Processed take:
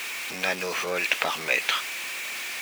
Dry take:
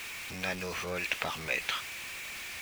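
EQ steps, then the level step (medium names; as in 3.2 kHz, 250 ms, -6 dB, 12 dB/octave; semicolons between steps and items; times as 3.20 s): high-pass 280 Hz 12 dB/octave; +8.0 dB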